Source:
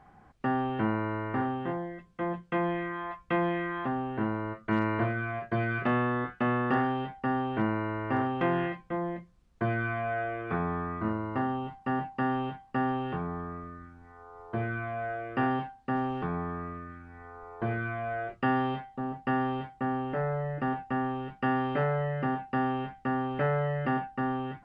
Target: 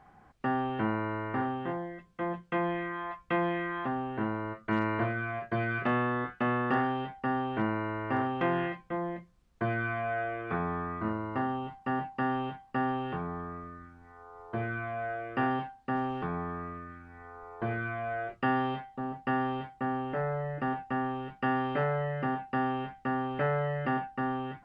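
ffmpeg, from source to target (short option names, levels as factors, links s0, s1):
-af "lowshelf=f=400:g=-3"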